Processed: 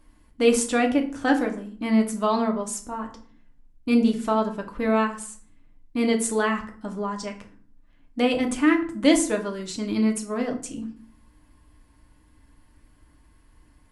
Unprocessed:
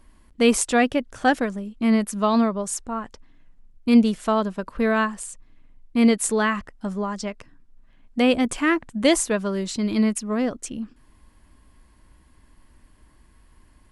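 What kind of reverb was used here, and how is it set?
FDN reverb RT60 0.48 s, low-frequency decay 1.45×, high-frequency decay 0.7×, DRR 2.5 dB; trim -4 dB

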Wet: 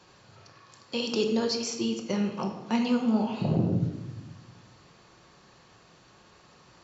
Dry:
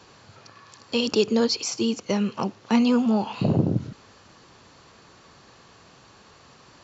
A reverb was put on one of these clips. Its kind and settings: simulated room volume 510 m³, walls mixed, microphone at 0.95 m; trim -6.5 dB

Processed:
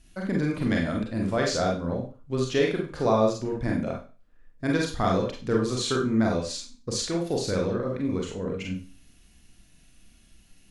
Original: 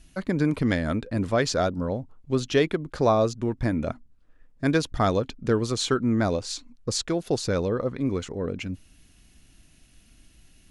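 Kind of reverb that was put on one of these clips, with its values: Schroeder reverb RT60 0.35 s, combs from 32 ms, DRR -1 dB; trim -4.5 dB

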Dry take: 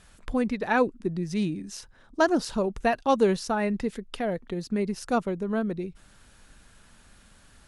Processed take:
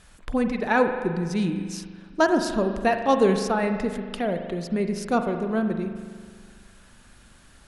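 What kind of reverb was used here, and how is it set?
spring tank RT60 1.8 s, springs 41 ms, chirp 55 ms, DRR 6 dB; trim +2 dB

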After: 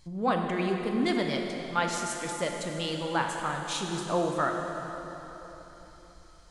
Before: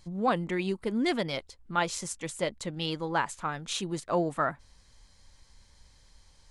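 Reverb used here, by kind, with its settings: plate-style reverb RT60 3.9 s, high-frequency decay 0.8×, DRR 1.5 dB; trim -1 dB

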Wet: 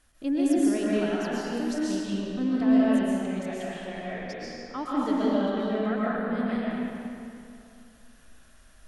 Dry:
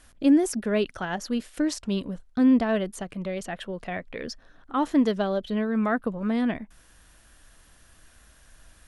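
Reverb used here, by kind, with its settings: algorithmic reverb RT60 2.6 s, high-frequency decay 0.8×, pre-delay 90 ms, DRR -7.5 dB; trim -9.5 dB

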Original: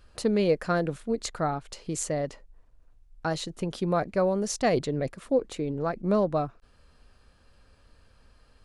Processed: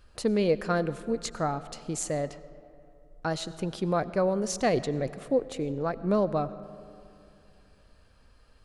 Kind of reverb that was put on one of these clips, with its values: algorithmic reverb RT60 2.7 s, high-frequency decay 0.5×, pre-delay 55 ms, DRR 15.5 dB; trim -1 dB

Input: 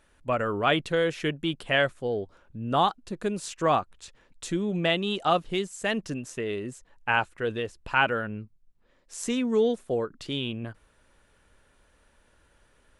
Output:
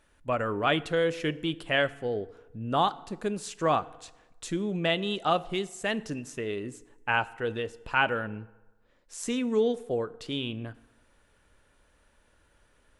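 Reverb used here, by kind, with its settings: FDN reverb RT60 1.1 s, low-frequency decay 0.85×, high-frequency decay 0.65×, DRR 16 dB; trim -2 dB

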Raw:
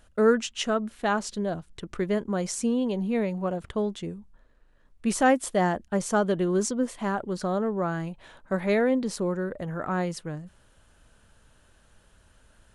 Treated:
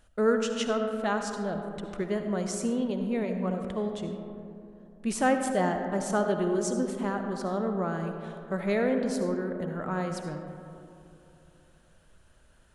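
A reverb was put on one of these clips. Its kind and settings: algorithmic reverb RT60 2.9 s, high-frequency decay 0.3×, pre-delay 30 ms, DRR 5 dB; trim -4 dB

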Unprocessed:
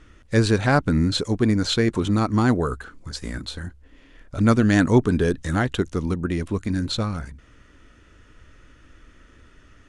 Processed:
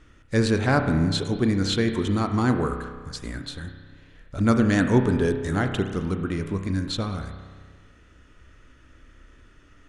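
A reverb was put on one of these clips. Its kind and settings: spring tank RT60 1.6 s, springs 31 ms, chirp 80 ms, DRR 6 dB; trim -3 dB

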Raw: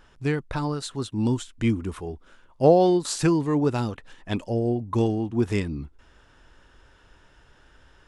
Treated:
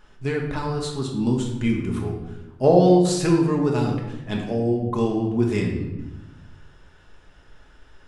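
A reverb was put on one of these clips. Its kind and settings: simulated room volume 460 m³, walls mixed, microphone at 1.4 m; trim -1.5 dB

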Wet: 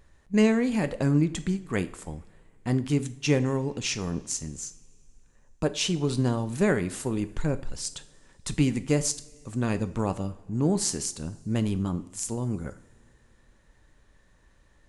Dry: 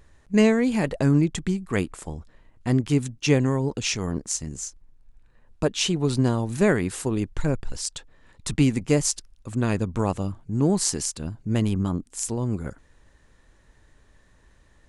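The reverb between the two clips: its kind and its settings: two-slope reverb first 0.49 s, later 2.6 s, from -19 dB, DRR 11 dB; trim -3.5 dB

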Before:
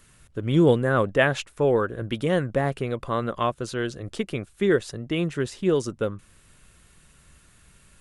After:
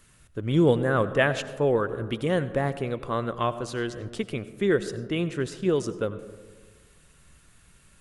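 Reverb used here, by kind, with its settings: algorithmic reverb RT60 1.5 s, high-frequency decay 0.3×, pre-delay 50 ms, DRR 13.5 dB; trim -2 dB

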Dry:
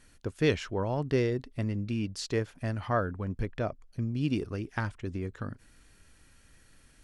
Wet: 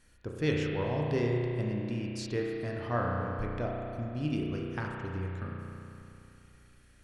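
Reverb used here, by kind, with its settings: spring tank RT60 2.8 s, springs 33 ms, chirp 70 ms, DRR -1.5 dB; trim -5 dB

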